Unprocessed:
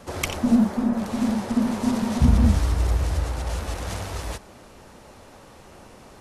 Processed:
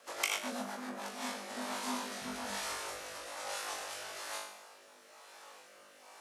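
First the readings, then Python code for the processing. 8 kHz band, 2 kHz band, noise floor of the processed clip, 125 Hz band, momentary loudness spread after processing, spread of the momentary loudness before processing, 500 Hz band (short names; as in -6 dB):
-3.5 dB, -3.5 dB, -59 dBFS, -37.5 dB, 19 LU, 12 LU, -11.0 dB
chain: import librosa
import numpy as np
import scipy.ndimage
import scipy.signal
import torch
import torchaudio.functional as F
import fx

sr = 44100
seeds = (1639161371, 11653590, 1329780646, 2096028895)

y = scipy.signal.sosfilt(scipy.signal.butter(2, 830.0, 'highpass', fs=sr, output='sos'), x)
y = fx.room_flutter(y, sr, wall_m=3.4, rt60_s=0.59)
y = fx.rotary_switch(y, sr, hz=8.0, then_hz=1.1, switch_at_s=0.63)
y = fx.quant_dither(y, sr, seeds[0], bits=12, dither='none')
y = F.gain(torch.from_numpy(y), -5.0).numpy()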